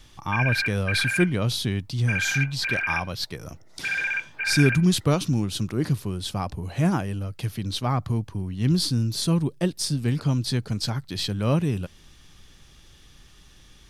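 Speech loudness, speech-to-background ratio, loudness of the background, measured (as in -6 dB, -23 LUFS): -25.5 LUFS, 1.0 dB, -26.5 LUFS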